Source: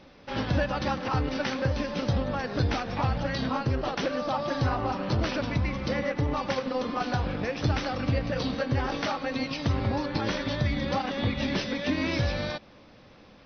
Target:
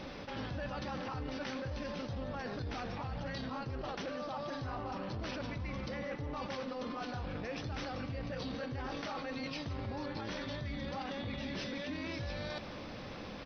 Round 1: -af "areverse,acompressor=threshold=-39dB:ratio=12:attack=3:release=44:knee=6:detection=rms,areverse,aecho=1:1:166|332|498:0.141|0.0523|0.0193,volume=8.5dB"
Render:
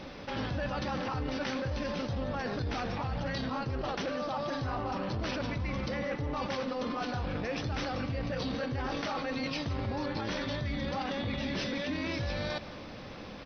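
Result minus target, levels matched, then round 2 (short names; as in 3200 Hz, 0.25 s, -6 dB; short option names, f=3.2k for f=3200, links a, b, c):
compressor: peak gain reduction -6 dB
-af "areverse,acompressor=threshold=-45.5dB:ratio=12:attack=3:release=44:knee=6:detection=rms,areverse,aecho=1:1:166|332|498:0.141|0.0523|0.0193,volume=8.5dB"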